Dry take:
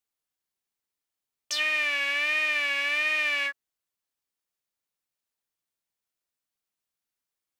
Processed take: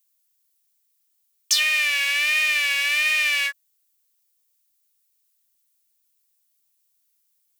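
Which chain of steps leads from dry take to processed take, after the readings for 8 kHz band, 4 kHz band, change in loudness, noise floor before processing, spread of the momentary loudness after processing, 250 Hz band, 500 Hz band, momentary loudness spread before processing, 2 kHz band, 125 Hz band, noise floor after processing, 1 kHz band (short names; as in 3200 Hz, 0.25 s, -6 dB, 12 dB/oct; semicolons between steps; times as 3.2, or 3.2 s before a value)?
+13.5 dB, +8.0 dB, +5.5 dB, under -85 dBFS, 3 LU, under -10 dB, -5.5 dB, 4 LU, +5.0 dB, n/a, -70 dBFS, -0.5 dB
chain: tilt +5.5 dB/oct; gain -1.5 dB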